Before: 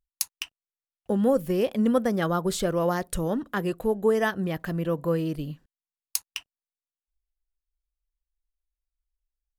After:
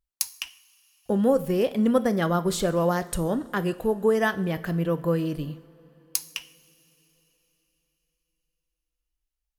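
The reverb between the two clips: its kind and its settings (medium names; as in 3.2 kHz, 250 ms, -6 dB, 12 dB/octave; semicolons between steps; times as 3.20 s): two-slope reverb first 0.54 s, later 4.1 s, from -18 dB, DRR 12 dB; trim +1 dB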